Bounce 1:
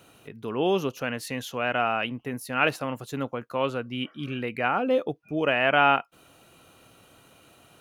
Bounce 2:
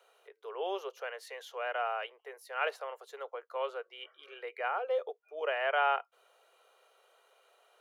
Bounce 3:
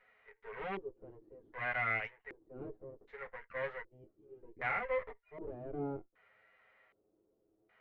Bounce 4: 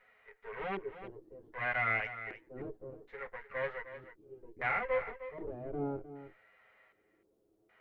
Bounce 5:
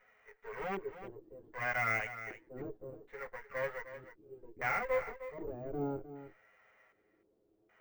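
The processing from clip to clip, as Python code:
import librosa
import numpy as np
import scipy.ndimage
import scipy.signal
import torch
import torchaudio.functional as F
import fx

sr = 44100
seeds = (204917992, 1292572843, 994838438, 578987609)

y1 = scipy.signal.sosfilt(scipy.signal.butter(12, 410.0, 'highpass', fs=sr, output='sos'), x)
y1 = fx.high_shelf(y1, sr, hz=5000.0, db=-10.0)
y1 = fx.notch(y1, sr, hz=2600.0, q=8.9)
y1 = y1 * librosa.db_to_amplitude(-7.5)
y2 = fx.lower_of_two(y1, sr, delay_ms=9.4)
y2 = fx.filter_lfo_lowpass(y2, sr, shape='square', hz=0.65, low_hz=340.0, high_hz=2000.0, q=6.7)
y2 = fx.hpss(y2, sr, part='percussive', gain_db=-7)
y2 = y2 * librosa.db_to_amplitude(-3.5)
y3 = y2 + 10.0 ** (-12.5 / 20.0) * np.pad(y2, (int(308 * sr / 1000.0), 0))[:len(y2)]
y3 = y3 * librosa.db_to_amplitude(2.5)
y4 = scipy.ndimage.median_filter(y3, 9, mode='constant')
y4 = fx.air_absorb(y4, sr, metres=59.0)
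y4 = np.repeat(scipy.signal.resample_poly(y4, 1, 2), 2)[:len(y4)]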